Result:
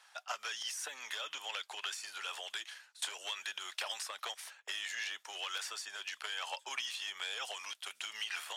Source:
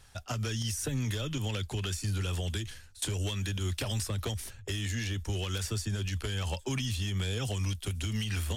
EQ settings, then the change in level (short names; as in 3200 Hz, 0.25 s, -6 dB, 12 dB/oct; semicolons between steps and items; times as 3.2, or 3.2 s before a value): HPF 770 Hz 24 dB/oct; LPF 3000 Hz 6 dB/oct; +2.5 dB